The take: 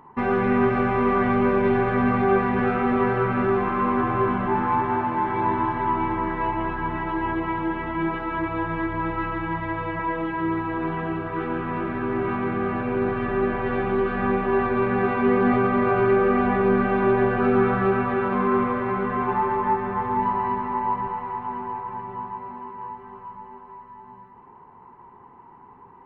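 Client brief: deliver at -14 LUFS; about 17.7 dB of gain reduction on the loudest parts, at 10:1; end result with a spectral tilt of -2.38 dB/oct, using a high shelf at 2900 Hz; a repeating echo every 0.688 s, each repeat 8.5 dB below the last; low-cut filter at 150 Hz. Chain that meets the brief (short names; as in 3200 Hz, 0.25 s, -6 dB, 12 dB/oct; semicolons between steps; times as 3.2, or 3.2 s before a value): HPF 150 Hz; high shelf 2900 Hz -7.5 dB; compressor 10:1, threshold -35 dBFS; feedback echo 0.688 s, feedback 38%, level -8.5 dB; gain +24 dB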